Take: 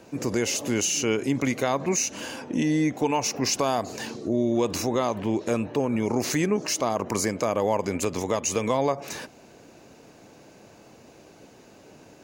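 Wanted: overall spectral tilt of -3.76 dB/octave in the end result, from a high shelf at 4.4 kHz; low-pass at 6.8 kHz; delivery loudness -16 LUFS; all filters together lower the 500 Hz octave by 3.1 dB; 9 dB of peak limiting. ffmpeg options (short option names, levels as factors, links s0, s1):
-af "lowpass=6800,equalizer=f=500:t=o:g=-4,highshelf=f=4400:g=3,volume=5.96,alimiter=limit=0.501:level=0:latency=1"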